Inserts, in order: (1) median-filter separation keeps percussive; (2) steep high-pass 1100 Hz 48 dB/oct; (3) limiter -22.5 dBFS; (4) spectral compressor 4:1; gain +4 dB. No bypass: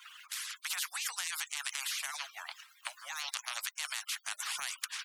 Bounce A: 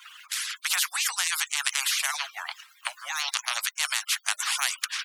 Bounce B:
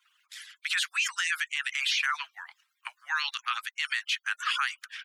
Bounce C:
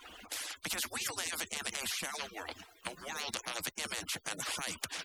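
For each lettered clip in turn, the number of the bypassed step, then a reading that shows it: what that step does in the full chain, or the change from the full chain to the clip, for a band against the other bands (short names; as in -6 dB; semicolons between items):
3, mean gain reduction 2.5 dB; 4, 8 kHz band -12.5 dB; 2, 500 Hz band +15.5 dB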